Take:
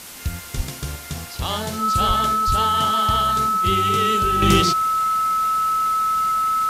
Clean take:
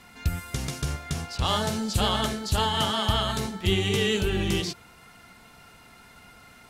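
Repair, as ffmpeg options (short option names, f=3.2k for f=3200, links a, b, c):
-filter_complex "[0:a]bandreject=f=1.3k:w=30,asplit=3[a][b][c];[a]afade=t=out:st=0.56:d=0.02[d];[b]highpass=f=140:w=0.5412,highpass=f=140:w=1.3066,afade=t=in:st=0.56:d=0.02,afade=t=out:st=0.68:d=0.02[e];[c]afade=t=in:st=0.68:d=0.02[f];[d][e][f]amix=inputs=3:normalize=0,asplit=3[g][h][i];[g]afade=t=out:st=2.07:d=0.02[j];[h]highpass=f=140:w=0.5412,highpass=f=140:w=1.3066,afade=t=in:st=2.07:d=0.02,afade=t=out:st=2.19:d=0.02[k];[i]afade=t=in:st=2.19:d=0.02[l];[j][k][l]amix=inputs=3:normalize=0,asplit=3[m][n][o];[m]afade=t=out:st=2.46:d=0.02[p];[n]highpass=f=140:w=0.5412,highpass=f=140:w=1.3066,afade=t=in:st=2.46:d=0.02,afade=t=out:st=2.58:d=0.02[q];[o]afade=t=in:st=2.58:d=0.02[r];[p][q][r]amix=inputs=3:normalize=0,afwtdn=0.014,asetnsamples=n=441:p=0,asendcmd='4.42 volume volume -9.5dB',volume=0dB"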